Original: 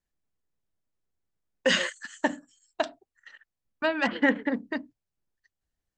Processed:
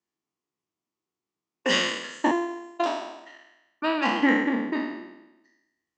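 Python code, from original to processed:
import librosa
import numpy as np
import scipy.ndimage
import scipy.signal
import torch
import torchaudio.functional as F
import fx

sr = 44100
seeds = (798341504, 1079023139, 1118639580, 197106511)

y = fx.spec_trails(x, sr, decay_s=0.99)
y = fx.robotise(y, sr, hz=344.0, at=(2.31, 2.86))
y = fx.cabinet(y, sr, low_hz=200.0, low_slope=12, high_hz=7400.0, hz=(340.0, 560.0, 1100.0, 1600.0, 3900.0), db=(7, -8, 6, -8, -4))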